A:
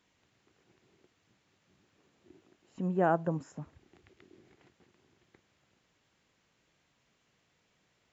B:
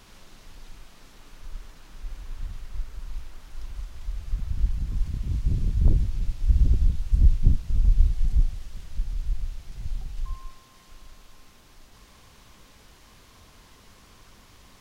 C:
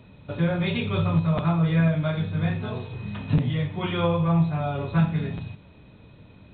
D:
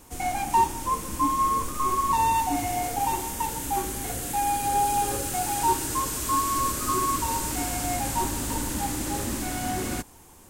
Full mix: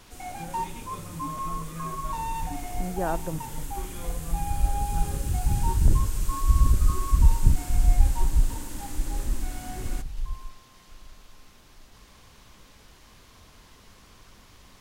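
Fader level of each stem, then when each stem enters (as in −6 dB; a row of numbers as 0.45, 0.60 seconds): −2.0, 0.0, −18.5, −10.0 decibels; 0.00, 0.00, 0.00, 0.00 seconds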